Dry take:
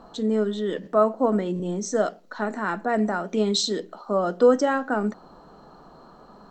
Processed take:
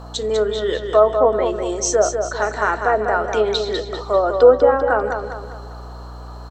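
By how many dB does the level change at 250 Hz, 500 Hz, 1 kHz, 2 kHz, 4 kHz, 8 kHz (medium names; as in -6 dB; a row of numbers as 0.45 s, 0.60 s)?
-5.0 dB, +8.0 dB, +7.5 dB, +7.5 dB, +3.0 dB, +9.0 dB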